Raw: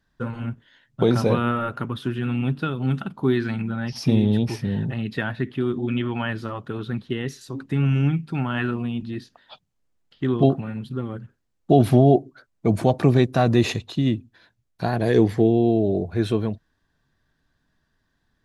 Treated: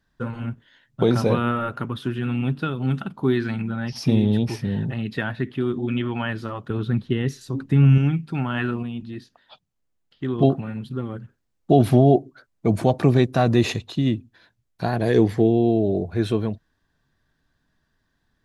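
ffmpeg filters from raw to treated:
-filter_complex "[0:a]asettb=1/sr,asplit=3[a][b][c];[a]atrim=end=6.704[d];[b]atrim=start=6.7:end=7.98,asetpts=PTS-STARTPTS,afade=t=in:d=0.004:c=qsin,afade=t=out:st=1.276:d=0.004:c=qsin,lowshelf=f=250:g=8.5[e];[c]atrim=start=7.976[f];[d][e]acrossfade=d=0.004:c1=hsin:c2=qsin[g];[g][f]acrossfade=d=0.004:c1=qsin:c2=hsin,asplit=3[h][i][j];[h]atrim=end=8.832[k];[i]atrim=start=8.828:end=10.382,asetpts=PTS-STARTPTS,volume=-3.5dB[l];[j]atrim=start=10.378[m];[k][l]acrossfade=d=0.004:c1=hsin:c2=hsin[n];[n][m]acrossfade=d=0.004:c1=hsin:c2=hsin"

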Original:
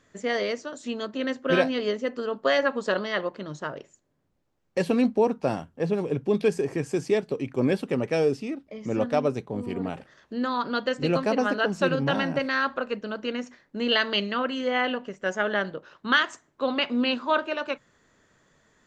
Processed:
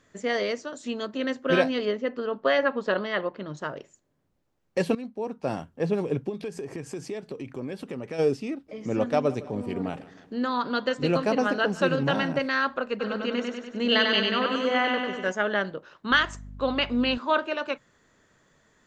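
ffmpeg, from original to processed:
-filter_complex "[0:a]asettb=1/sr,asplit=3[a][b][c];[a]atrim=end=1.854[d];[b]atrim=start=1.85:end=3.57,asetpts=PTS-STARTPTS,afade=t=in:d=0.004:c=qsin,afade=t=out:st=1.716:d=0.004:c=qsin,lowpass=3.6k[e];[c]atrim=start=3.566[f];[d][e]acrossfade=d=0.004:c1=hsin:c2=qsin[g];[g][f]acrossfade=d=0.004:c1=qsin:c2=hsin,asplit=3[h][i][j];[h]afade=t=out:st=6.28:d=0.02[k];[i]acompressor=threshold=-32dB:ratio=4:attack=3.2:release=140:knee=1:detection=peak,afade=t=in:st=6.28:d=0.02,afade=t=out:st=8.18:d=0.02[l];[j]afade=t=in:st=8.18:d=0.02[m];[k][l][m]amix=inputs=3:normalize=0,asplit=3[n][o][p];[n]afade=t=out:st=8.68:d=0.02[q];[o]aecho=1:1:157|314|471|628|785:0.112|0.0662|0.0391|0.023|0.0136,afade=t=in:st=8.68:d=0.02,afade=t=out:st=12.32:d=0.02[r];[p]afade=t=in:st=12.32:d=0.02[s];[q][r][s]amix=inputs=3:normalize=0,asplit=3[t][u][v];[t]afade=t=out:st=12.99:d=0.02[w];[u]aecho=1:1:97|194|291|388|485|582|679|776:0.668|0.394|0.233|0.137|0.081|0.0478|0.0282|0.0166,afade=t=in:st=12.99:d=0.02,afade=t=out:st=15.31:d=0.02[x];[v]afade=t=in:st=15.31:d=0.02[y];[w][x][y]amix=inputs=3:normalize=0,asettb=1/sr,asplit=3[z][aa][ab];[z]atrim=end=16.114[ac];[aa]atrim=start=16.11:end=17.18,asetpts=PTS-STARTPTS,afade=t=in:d=0.004:c=qsin,afade=t=out:st=1.066:d=0.004:c=qsin,aeval=exprs='val(0)+0.01*(sin(2*PI*50*n/s)+sin(2*PI*2*50*n/s)/2+sin(2*PI*3*50*n/s)/3+sin(2*PI*4*50*n/s)/4+sin(2*PI*5*50*n/s)/5)':c=same[ad];[ab]atrim=start=17.176[ae];[ac][ad]acrossfade=d=0.004:c1=hsin:c2=qsin[af];[af][ae]acrossfade=d=0.004:c1=qsin:c2=hsin,asplit=2[ag][ah];[ag]atrim=end=4.95,asetpts=PTS-STARTPTS,afade=t=out:st=4.946:d=0.004:c=hsin:silence=0.158489[ai];[ah]atrim=start=4.95,asetpts=PTS-STARTPTS,afade=t=in:d=0.66:c=qua:silence=0.158489[aj];[ai][aj]concat=n=2:v=0:a=1"

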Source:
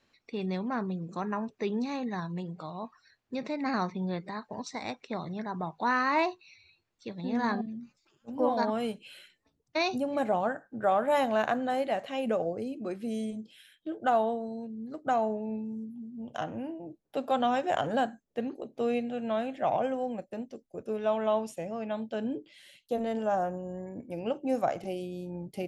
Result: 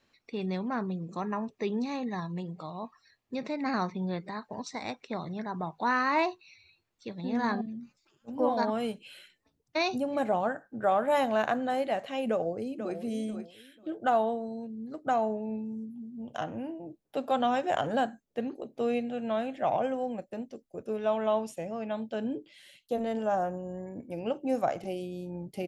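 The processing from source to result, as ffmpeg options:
-filter_complex "[0:a]asettb=1/sr,asplit=3[a][b][c];[a]atrim=end=0.944[d];[b]atrim=start=0.94:end=3.37,asetpts=PTS-STARTPTS,afade=t=in:d=0.004:c=qsin,afade=t=out:st=2.426:d=0.004:c=qsin,asuperstop=centerf=1500:order=4:qfactor=7.1[e];[c]atrim=start=3.366[f];[d][e]acrossfade=d=0.004:c1=hsin:c2=qsin[g];[g][f]acrossfade=d=0.004:c1=qsin:c2=hsin,asplit=2[h][i];[i]afade=t=in:st=12.29:d=0.01,afade=t=out:st=12.96:d=0.01,aecho=0:1:490|980|1470:0.334965|0.0837414|0.0209353[j];[h][j]amix=inputs=2:normalize=0"

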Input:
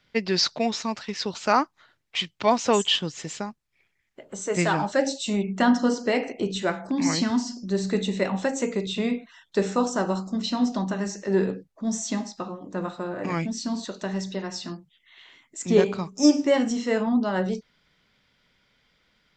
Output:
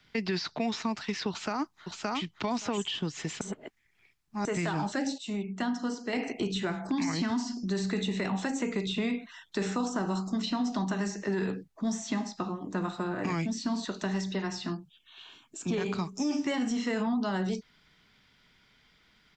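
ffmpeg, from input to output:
-filter_complex "[0:a]asplit=2[a][b];[b]afade=t=in:st=1.29:d=0.01,afade=t=out:st=2.2:d=0.01,aecho=0:1:570|1140:0.530884|0.0530884[c];[a][c]amix=inputs=2:normalize=0,asettb=1/sr,asplit=3[d][e][f];[d]atrim=end=14.734[g];[e]atrim=start=14.73:end=15.73,asetpts=PTS-STARTPTS,afade=t=in:d=0.004:c=qsin,afade=t=out:st=0.996:d=0.004:c=qsin,asuperstop=centerf=2000:order=4:qfactor=3.6[h];[f]atrim=start=15.726[i];[g][h]acrossfade=d=0.004:c1=hsin:c2=qsin[j];[j][i]acrossfade=d=0.004:c1=qsin:c2=hsin,asplit=5[k][l][m][n][o];[k]atrim=end=3.412[p];[l]atrim=start=3.408:end=4.452,asetpts=PTS-STARTPTS,areverse[q];[m]atrim=start=4.448:end=5.182[r];[n]atrim=start=5.178:end=6.132,asetpts=PTS-STARTPTS,volume=-9.5dB[s];[o]atrim=start=6.128[t];[p][q]acrossfade=d=0.004:c1=hsin:c2=hsin[u];[u][r]acrossfade=d=0.004:c1=hsin:c2=hsin[v];[v][s]acrossfade=d=0.004:c1=hsin:c2=hsin[w];[w][t]acrossfade=d=0.004:c1=hsin:c2=hsin,equalizer=f=540:t=o:w=0.25:g=-10.5,alimiter=limit=-18.5dB:level=0:latency=1:release=21,acrossover=split=290|710|3400[x][y][z][aa];[x]acompressor=threshold=-34dB:ratio=4[ab];[y]acompressor=threshold=-40dB:ratio=4[ac];[z]acompressor=threshold=-39dB:ratio=4[ad];[aa]acompressor=threshold=-47dB:ratio=4[ae];[ab][ac][ad][ae]amix=inputs=4:normalize=0,volume=2.5dB"

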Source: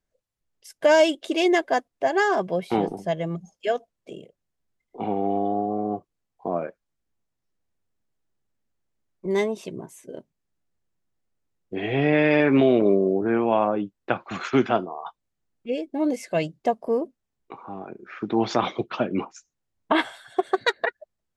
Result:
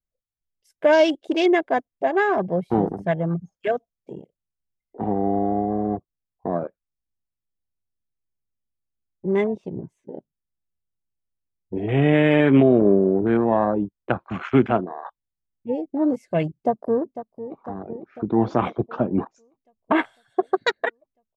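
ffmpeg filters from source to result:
-filter_complex "[0:a]asettb=1/sr,asplit=3[a][b][c];[a]atrim=end=2.874[d];[b]atrim=start=2.87:end=3.68,asetpts=PTS-STARTPTS,afade=t=in:d=0.004:c=qsin,afade=t=out:st=0.806:d=0.004:c=qsin,equalizer=f=1.5k:w=1.5:g=10.5[e];[c]atrim=start=3.676[f];[d][e]acrossfade=d=0.004:c1=hsin:c2=qsin[g];[g][f]acrossfade=d=0.004:c1=qsin:c2=hsin,asettb=1/sr,asplit=3[h][i][j];[h]atrim=end=5.734[k];[i]atrim=start=5.73:end=11.82,asetpts=PTS-STARTPTS,afade=t=in:d=0.004:c=qsin,afade=t=out:st=6.086:d=0.004:c=qsin,adynamicsmooth=sensitivity=5.5:basefreq=4.5k[l];[j]atrim=start=11.816[m];[k][l]acrossfade=d=0.004:c1=hsin:c2=qsin[n];[n][m]acrossfade=d=0.004:c1=qsin:c2=hsin,asplit=2[o][p];[p]afade=t=in:st=16.56:d=0.01,afade=t=out:st=17.56:d=0.01,aecho=0:1:500|1000|1500|2000|2500|3000|3500|4000|4500|5000|5500|6000:0.237137|0.177853|0.13339|0.100042|0.0750317|0.0562738|0.0422054|0.031654|0.0237405|0.0178054|0.013354|0.0100155[q];[o][q]amix=inputs=2:normalize=0,afwtdn=0.0251,lowshelf=f=180:g=11.5"

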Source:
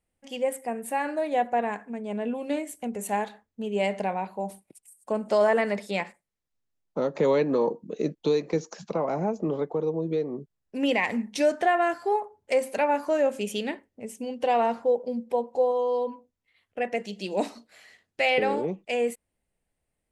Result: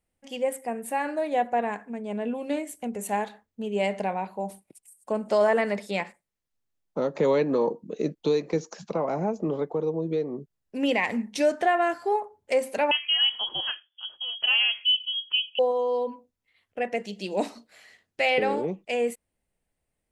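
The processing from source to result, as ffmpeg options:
-filter_complex "[0:a]asettb=1/sr,asplit=3[a][b][c];[a]atrim=end=12.914[d];[b]atrim=start=12.91:end=15.59,asetpts=PTS-STARTPTS,afade=t=in:d=0.004:c=qsin,afade=t=out:st=2.676:d=0.004:c=qsin,lowpass=f=3k:t=q:w=0.5098,lowpass=f=3k:t=q:w=0.6013,lowpass=f=3k:t=q:w=0.9,lowpass=f=3k:t=q:w=2.563,afreqshift=-3500[e];[c]atrim=start=15.586[f];[d][e]acrossfade=d=0.004:c1=hsin:c2=qsin[g];[g][f]acrossfade=d=0.004:c1=qsin:c2=hsin"

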